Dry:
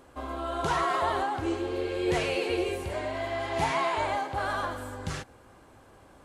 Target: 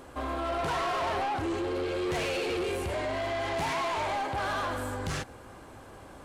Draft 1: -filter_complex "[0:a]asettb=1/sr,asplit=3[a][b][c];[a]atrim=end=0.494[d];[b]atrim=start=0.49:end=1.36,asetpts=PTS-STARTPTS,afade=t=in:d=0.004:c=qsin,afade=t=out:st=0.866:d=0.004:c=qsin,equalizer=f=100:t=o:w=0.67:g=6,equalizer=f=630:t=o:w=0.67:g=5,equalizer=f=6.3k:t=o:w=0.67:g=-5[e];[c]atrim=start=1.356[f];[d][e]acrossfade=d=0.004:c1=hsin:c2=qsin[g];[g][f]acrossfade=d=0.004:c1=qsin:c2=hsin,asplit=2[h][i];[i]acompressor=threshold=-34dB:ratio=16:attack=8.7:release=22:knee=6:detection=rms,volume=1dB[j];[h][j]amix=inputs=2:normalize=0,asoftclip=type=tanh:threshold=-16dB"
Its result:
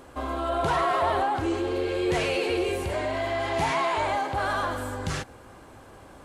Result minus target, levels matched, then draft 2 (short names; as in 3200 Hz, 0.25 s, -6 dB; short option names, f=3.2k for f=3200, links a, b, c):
soft clip: distortion -13 dB
-filter_complex "[0:a]asettb=1/sr,asplit=3[a][b][c];[a]atrim=end=0.494[d];[b]atrim=start=0.49:end=1.36,asetpts=PTS-STARTPTS,afade=t=in:d=0.004:c=qsin,afade=t=out:st=0.866:d=0.004:c=qsin,equalizer=f=100:t=o:w=0.67:g=6,equalizer=f=630:t=o:w=0.67:g=5,equalizer=f=6.3k:t=o:w=0.67:g=-5[e];[c]atrim=start=1.356[f];[d][e]acrossfade=d=0.004:c1=hsin:c2=qsin[g];[g][f]acrossfade=d=0.004:c1=qsin:c2=hsin,asplit=2[h][i];[i]acompressor=threshold=-34dB:ratio=16:attack=8.7:release=22:knee=6:detection=rms,volume=1dB[j];[h][j]amix=inputs=2:normalize=0,asoftclip=type=tanh:threshold=-27.5dB"